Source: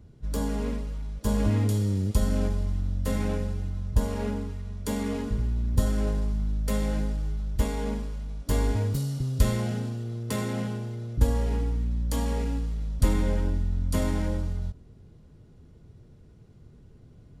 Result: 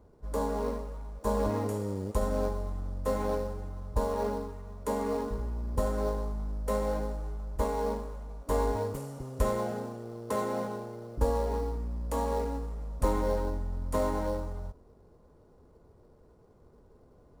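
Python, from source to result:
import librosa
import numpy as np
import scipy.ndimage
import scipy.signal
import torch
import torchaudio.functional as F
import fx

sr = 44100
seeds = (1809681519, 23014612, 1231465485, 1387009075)

p1 = fx.graphic_eq(x, sr, hz=(125, 500, 1000, 4000, 8000), db=(-9, 9, 12, -11, 4))
p2 = fx.sample_hold(p1, sr, seeds[0], rate_hz=5000.0, jitter_pct=20)
p3 = p1 + (p2 * librosa.db_to_amplitude(-9.0))
y = p3 * librosa.db_to_amplitude(-8.5)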